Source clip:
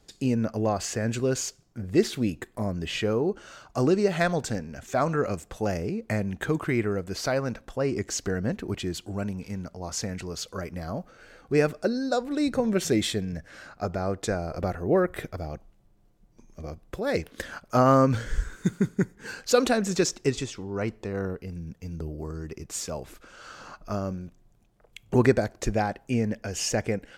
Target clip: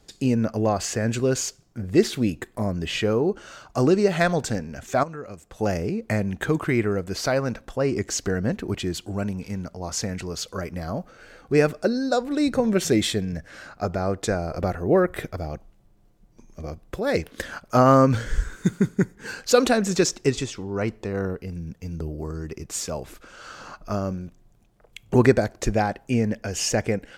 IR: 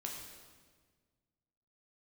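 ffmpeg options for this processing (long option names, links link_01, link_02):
-filter_complex "[0:a]asettb=1/sr,asplit=3[link_01][link_02][link_03];[link_01]atrim=end=5.034[link_04];[link_02]atrim=start=5.03:end=5.59,asetpts=PTS-STARTPTS,afade=type=in:duration=0.004:curve=qsin,afade=type=out:start_time=0.556:duration=0.004:curve=qsin,acompressor=threshold=-48dB:ratio=2[link_05];[link_03]atrim=start=5.586[link_06];[link_04][link_05]acrossfade=duration=0.004:curve1=hsin:curve2=qsin[link_07];[link_07][link_06]acrossfade=duration=0.004:curve1=qsin:curve2=hsin,volume=3.5dB"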